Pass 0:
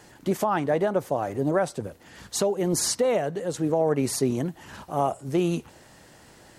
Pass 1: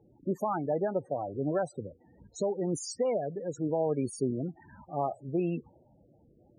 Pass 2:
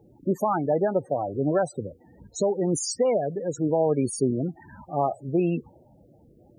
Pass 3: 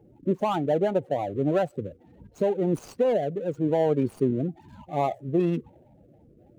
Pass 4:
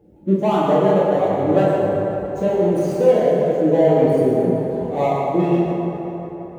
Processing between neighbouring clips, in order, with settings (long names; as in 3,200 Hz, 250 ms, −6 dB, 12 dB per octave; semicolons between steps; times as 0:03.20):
low-pass that shuts in the quiet parts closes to 620 Hz, open at −24.5 dBFS; spectral peaks only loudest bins 16; level −6 dB
high-shelf EQ 5,500 Hz +5 dB; level +6.5 dB
running median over 25 samples
convolution reverb RT60 4.2 s, pre-delay 7 ms, DRR −8.5 dB